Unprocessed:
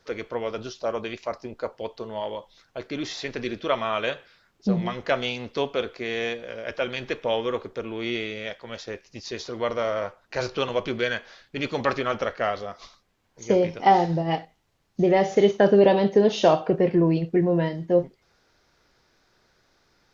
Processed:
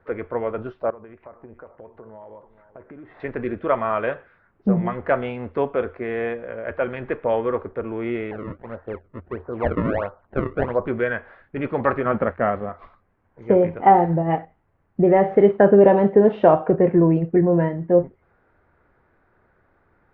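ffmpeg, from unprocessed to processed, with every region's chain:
ffmpeg -i in.wav -filter_complex "[0:a]asettb=1/sr,asplit=3[link_01][link_02][link_03];[link_01]atrim=end=0.904[link_04];[link_02]atrim=start=0.9:end=3.2,asetpts=PTS-STARTPTS,afade=type=in:duration=0.004:curve=qsin,afade=type=out:start_time=2.296:duration=0.004:curve=qsin,lowpass=2100,acompressor=threshold=-43dB:ratio=6:attack=3.2:release=140:knee=1:detection=peak,aecho=1:1:437:0.188,atrim=end_sample=101430[link_05];[link_03]atrim=start=3.196[link_06];[link_04][link_05]acrossfade=duration=0.004:curve1=hsin:curve2=qsin[link_07];[link_07][link_06]acrossfade=duration=0.004:curve1=qsin:curve2=hsin,asettb=1/sr,asplit=3[link_08][link_09][link_10];[link_08]atrim=end=8.314[link_11];[link_09]atrim=start=8.31:end=10.87,asetpts=PTS-STARTPTS,afade=type=in:duration=0.004:curve=qsin,afade=type=out:start_time=2.556:duration=0.004:curve=qsin,lowpass=frequency=1500:width=0.5412,lowpass=frequency=1500:width=1.3066,acrusher=samples=32:mix=1:aa=0.000001:lfo=1:lforange=51.2:lforate=1.5[link_12];[link_10]atrim=start=10.866[link_13];[link_11][link_12]acrossfade=duration=0.004:curve1=hsin:curve2=qsin[link_14];[link_14][link_13]acrossfade=duration=0.004:curve1=qsin:curve2=hsin,asettb=1/sr,asplit=3[link_15][link_16][link_17];[link_15]atrim=end=12.054[link_18];[link_16]atrim=start=12.05:end=12.69,asetpts=PTS-STARTPTS,afade=type=in:duration=0.004:curve=qsin,afade=type=out:start_time=0.636:duration=0.004:curve=qsin,lowpass=4400,equalizer=frequency=190:width_type=o:width=1.3:gain=10,aeval=exprs='sgn(val(0))*max(abs(val(0))-0.00596,0)':channel_layout=same[link_19];[link_17]atrim=start=12.686[link_20];[link_18][link_19]acrossfade=duration=0.004:curve1=hsin:curve2=qsin[link_21];[link_21][link_20]acrossfade=duration=0.004:curve1=qsin:curve2=hsin,lowpass=frequency=1800:width=0.5412,lowpass=frequency=1800:width=1.3066,equalizer=frequency=86:width_type=o:width=0.23:gain=9,volume=4dB" out.wav

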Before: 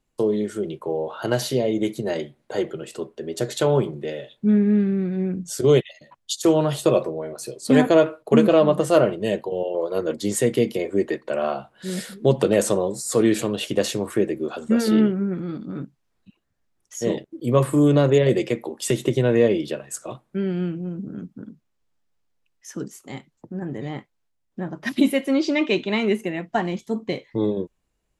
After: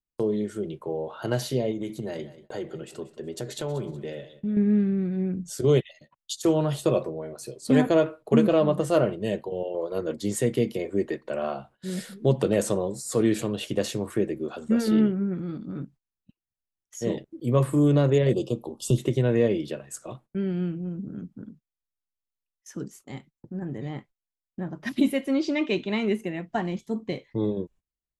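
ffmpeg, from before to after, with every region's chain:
ffmpeg -i in.wav -filter_complex "[0:a]asettb=1/sr,asplit=3[link_01][link_02][link_03];[link_01]atrim=end=1.714[link_04];[link_02]atrim=start=1.71:end=4.57,asetpts=PTS-STARTPTS,afade=type=in:duration=0.004:curve=qsin,afade=type=out:start_time=2.856:duration=0.004:curve=qsin,acompressor=threshold=-25dB:ratio=2.5:attack=3.2:release=140:knee=1:detection=peak,aecho=1:1:185|370|555:0.158|0.0571|0.0205,atrim=end_sample=126126[link_05];[link_03]atrim=start=4.566[link_06];[link_04][link_05]acrossfade=duration=0.004:curve1=hsin:curve2=qsin[link_07];[link_07][link_06]acrossfade=duration=0.004:curve1=qsin:curve2=hsin,asettb=1/sr,asplit=3[link_08][link_09][link_10];[link_08]atrim=end=18.334[link_11];[link_09]atrim=start=18.33:end=18.98,asetpts=PTS-STARTPTS,afade=type=in:duration=0.004:curve=qsin,afade=type=out:start_time=0.646:duration=0.004:curve=qsin,asubboost=boost=8:cutoff=240,asuperstop=centerf=1900:order=8:qfactor=1.2[link_12];[link_10]atrim=start=18.976[link_13];[link_11][link_12]acrossfade=duration=0.004:curve1=hsin:curve2=qsin[link_14];[link_14][link_13]acrossfade=duration=0.004:curve1=qsin:curve2=hsin,agate=range=-21dB:threshold=-46dB:ratio=16:detection=peak,lowshelf=frequency=170:gain=8,volume=-6dB" out.wav

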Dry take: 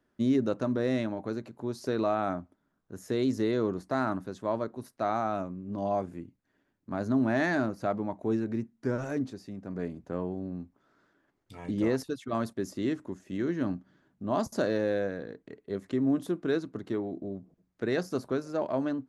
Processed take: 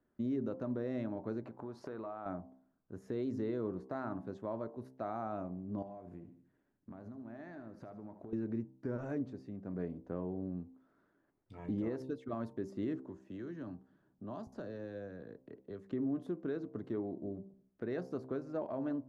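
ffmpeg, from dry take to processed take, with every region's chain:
ffmpeg -i in.wav -filter_complex "[0:a]asettb=1/sr,asplit=3[link_01][link_02][link_03];[link_01]atrim=end=1.454[link_04];[link_02]atrim=start=1.45:end=2.26,asetpts=PTS-STARTPTS,afade=type=in:duration=0.004:curve=qsin,afade=type=out:start_time=0.806:duration=0.004:curve=qsin,equalizer=frequency=1100:width=0.63:gain=10,acompressor=threshold=-36dB:ratio=6:attack=3.2:release=140:knee=1:detection=peak[link_05];[link_03]atrim=start=2.256[link_06];[link_04][link_05]acrossfade=duration=0.004:curve1=hsin:curve2=qsin[link_07];[link_07][link_06]acrossfade=duration=0.004:curve1=qsin:curve2=hsin,asettb=1/sr,asplit=3[link_08][link_09][link_10];[link_08]atrim=end=5.824[link_11];[link_09]atrim=start=5.82:end=8.33,asetpts=PTS-STARTPTS,afade=type=in:duration=0.004:curve=qsin,afade=type=out:start_time=2.506:duration=0.004:curve=qsin,acompressor=threshold=-40dB:ratio=20:attack=3.2:release=140:knee=1:detection=peak,aecho=1:1:76|152|228|304|380:0.237|0.119|0.0593|0.0296|0.0148,atrim=end_sample=110691[link_12];[link_10]atrim=start=8.326[link_13];[link_11][link_12]acrossfade=duration=0.004:curve1=hsin:curve2=qsin[link_14];[link_14][link_13]acrossfade=duration=0.004:curve1=qsin:curve2=hsin,asettb=1/sr,asplit=3[link_15][link_16][link_17];[link_15]atrim=end=13.004[link_18];[link_16]atrim=start=13:end=15.92,asetpts=PTS-STARTPTS,afade=type=in:duration=0.004:curve=qsin,afade=type=out:start_time=2.916:duration=0.004:curve=qsin,equalizer=frequency=2100:width=5.7:gain=-5.5,acrossover=split=110|330|1100|3900[link_19][link_20][link_21][link_22][link_23];[link_19]acompressor=threshold=-53dB:ratio=3[link_24];[link_20]acompressor=threshold=-48dB:ratio=3[link_25];[link_21]acompressor=threshold=-46dB:ratio=3[link_26];[link_22]acompressor=threshold=-52dB:ratio=3[link_27];[link_23]acompressor=threshold=-57dB:ratio=3[link_28];[link_24][link_25][link_26][link_27][link_28]amix=inputs=5:normalize=0[link_29];[link_17]atrim=start=15.916[link_30];[link_18][link_29]acrossfade=duration=0.004:curve1=hsin:curve2=qsin[link_31];[link_31][link_30]acrossfade=duration=0.004:curve1=qsin:curve2=hsin,lowpass=frequency=1000:poles=1,bandreject=frequency=65.11:width_type=h:width=4,bandreject=frequency=130.22:width_type=h:width=4,bandreject=frequency=195.33:width_type=h:width=4,bandreject=frequency=260.44:width_type=h:width=4,bandreject=frequency=325.55:width_type=h:width=4,bandreject=frequency=390.66:width_type=h:width=4,bandreject=frequency=455.77:width_type=h:width=4,bandreject=frequency=520.88:width_type=h:width=4,bandreject=frequency=585.99:width_type=h:width=4,bandreject=frequency=651.1:width_type=h:width=4,bandreject=frequency=716.21:width_type=h:width=4,bandreject=frequency=781.32:width_type=h:width=4,bandreject=frequency=846.43:width_type=h:width=4,bandreject=frequency=911.54:width_type=h:width=4,bandreject=frequency=976.65:width_type=h:width=4,bandreject=frequency=1041.76:width_type=h:width=4,bandreject=frequency=1106.87:width_type=h:width=4,alimiter=level_in=1dB:limit=-24dB:level=0:latency=1:release=247,volume=-1dB,volume=-3dB" out.wav

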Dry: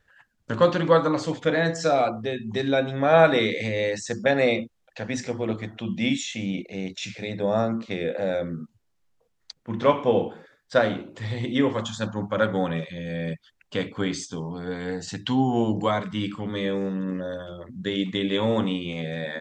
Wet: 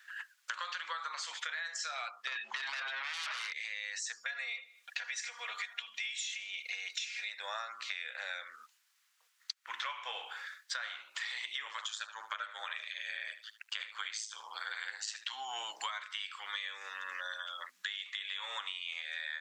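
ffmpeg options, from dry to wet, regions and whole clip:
ffmpeg -i in.wav -filter_complex "[0:a]asettb=1/sr,asplit=3[link_01][link_02][link_03];[link_01]atrim=end=2.274[link_04];[link_02]atrim=start=2.27:end=3.53,asetpts=PTS-STARTPTS,afade=type=in:duration=0.004:curve=qsin,afade=type=out:start_time=1.256:duration=0.004:curve=qsin,lowpass=2900,acontrast=68,aeval=exprs='0.794*sin(PI/2*4.47*val(0)/0.794)':channel_layout=same[link_05];[link_03]atrim=start=3.526[link_06];[link_04][link_05]acrossfade=duration=0.004:curve1=hsin:curve2=qsin[link_07];[link_07][link_06]acrossfade=duration=0.004:curve1=qsin:curve2=hsin,asettb=1/sr,asplit=3[link_08][link_09][link_10];[link_08]atrim=end=4.174[link_11];[link_09]atrim=start=4.17:end=7.28,asetpts=PTS-STARTPTS,afade=type=in:duration=0.004:curve=qsin,afade=type=out:start_time=3.106:duration=0.004:curve=qsin,aecho=1:1:4.2:0.83,atrim=end_sample=137151,acompressor=threshold=-31dB:ratio=2:attack=3.2:release=140:knee=1:detection=peak,aecho=1:1:77|154|231:0.0668|0.0301|0.0135,atrim=end_sample=137151[link_12];[link_10]atrim=start=7.276[link_13];[link_11][link_12]acrossfade=duration=0.004:curve1=hsin:curve2=qsin[link_14];[link_14][link_13]acrossfade=duration=0.004:curve1=qsin:curve2=hsin,asettb=1/sr,asplit=3[link_15][link_16][link_17];[link_15]atrim=end=11.634[link_18];[link_16]atrim=start=11.63:end=15.33,asetpts=PTS-STARTPTS,afade=type=in:duration=0.004:curve=qsin,afade=type=out:start_time=3.696:duration=0.004:curve=qsin,aeval=exprs='val(0)*sin(2*PI*54*n/s)':channel_layout=same,aecho=1:1:75:0.158,atrim=end_sample=163170[link_19];[link_17]atrim=start=15.326[link_20];[link_18][link_19]acrossfade=duration=0.004:curve1=hsin:curve2=qsin[link_21];[link_21][link_20]acrossfade=duration=0.004:curve1=qsin:curve2=hsin,highpass=frequency=1300:width=0.5412,highpass=frequency=1300:width=1.3066,alimiter=limit=-23dB:level=0:latency=1:release=68,acompressor=threshold=-49dB:ratio=12,volume=12.5dB" out.wav

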